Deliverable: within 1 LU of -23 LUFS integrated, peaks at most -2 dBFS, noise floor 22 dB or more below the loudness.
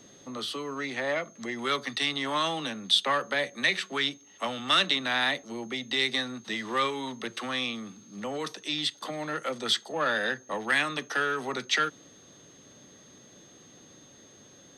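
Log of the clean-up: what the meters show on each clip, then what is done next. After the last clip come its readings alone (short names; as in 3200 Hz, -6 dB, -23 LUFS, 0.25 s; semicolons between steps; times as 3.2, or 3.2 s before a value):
steady tone 6400 Hz; tone level -55 dBFS; loudness -28.5 LUFS; peak -9.5 dBFS; loudness target -23.0 LUFS
-> notch 6400 Hz, Q 30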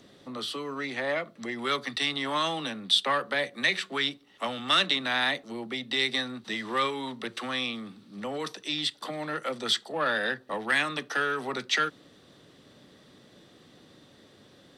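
steady tone none; loudness -29.0 LUFS; peak -9.5 dBFS; loudness target -23.0 LUFS
-> gain +6 dB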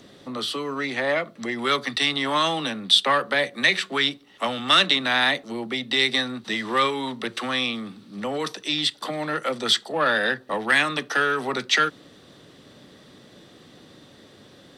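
loudness -22.5 LUFS; peak -3.5 dBFS; noise floor -51 dBFS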